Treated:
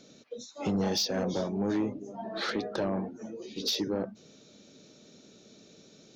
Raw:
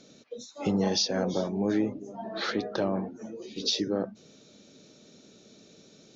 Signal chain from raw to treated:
sine wavefolder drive 4 dB, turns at −14.5 dBFS
level −8.5 dB

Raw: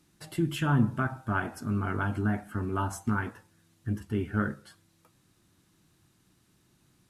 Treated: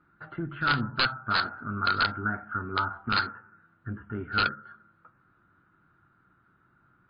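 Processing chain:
one-sided soft clipper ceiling −15 dBFS
low-pass with resonance 1,400 Hz, resonance Q 13
on a send at −21 dB: convolution reverb RT60 1.0 s, pre-delay 4 ms
on the sum: wrap-around overflow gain 9 dB
in parallel at 0 dB: downward compressor 6 to 1, threshold −34 dBFS, peak gain reduction 19 dB
on the sum: level −7.5 dB
MP3 24 kbit/s 11,025 Hz

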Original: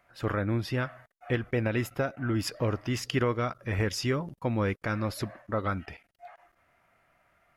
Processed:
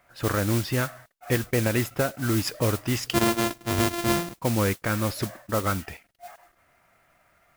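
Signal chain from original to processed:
0:03.13–0:04.42: samples sorted by size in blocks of 128 samples
noise that follows the level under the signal 11 dB
level +4 dB

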